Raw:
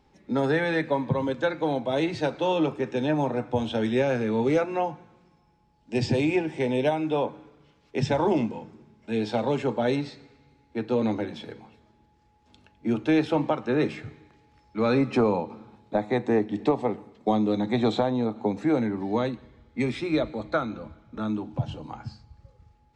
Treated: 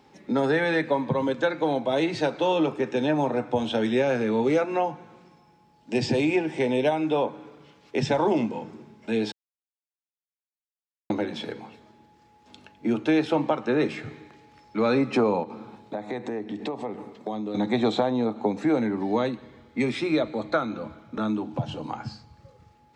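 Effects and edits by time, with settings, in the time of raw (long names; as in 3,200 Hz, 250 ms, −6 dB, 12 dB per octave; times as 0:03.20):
0:09.32–0:11.10: silence
0:15.43–0:17.55: downward compressor 3 to 1, threshold −37 dBFS
whole clip: Bessel high-pass filter 170 Hz, order 2; downward compressor 1.5 to 1, threshold −39 dBFS; level +8 dB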